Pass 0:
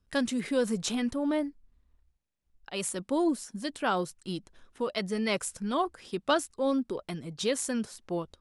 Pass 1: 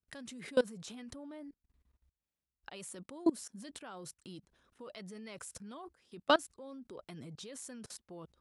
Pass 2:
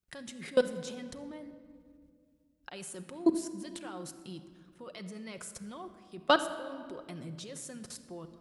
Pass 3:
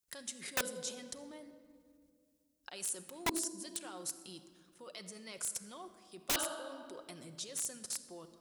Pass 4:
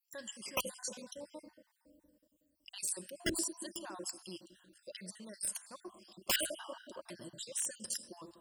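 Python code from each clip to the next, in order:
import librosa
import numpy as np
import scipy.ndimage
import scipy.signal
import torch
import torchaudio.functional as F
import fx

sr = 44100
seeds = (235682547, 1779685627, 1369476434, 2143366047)

y1 = scipy.signal.sosfilt(scipy.signal.butter(4, 41.0, 'highpass', fs=sr, output='sos'), x)
y1 = fx.level_steps(y1, sr, step_db=24)
y1 = y1 * 10.0 ** (1.0 / 20.0)
y2 = fx.room_shoebox(y1, sr, seeds[0], volume_m3=3900.0, walls='mixed', distance_m=0.94)
y2 = y2 * 10.0 ** (2.5 / 20.0)
y3 = fx.bass_treble(y2, sr, bass_db=-9, treble_db=12)
y3 = (np.mod(10.0 ** (21.5 / 20.0) * y3 + 1.0, 2.0) - 1.0) / 10.0 ** (21.5 / 20.0)
y3 = y3 * 10.0 ** (-4.0 / 20.0)
y4 = fx.spec_dropout(y3, sr, seeds[1], share_pct=52)
y4 = fx.ripple_eq(y4, sr, per_octave=1.3, db=7)
y4 = y4 * 10.0 ** (2.5 / 20.0)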